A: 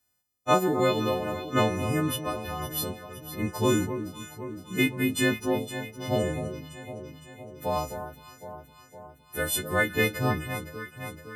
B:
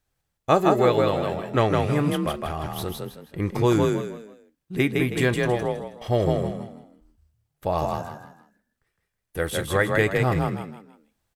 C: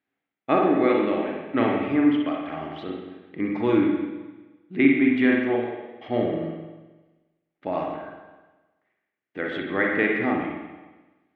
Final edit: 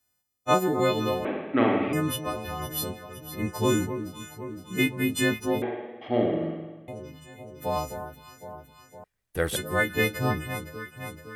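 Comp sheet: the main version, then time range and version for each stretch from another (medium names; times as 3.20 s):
A
1.25–1.93 s: from C
5.62–6.88 s: from C
9.04–9.56 s: from B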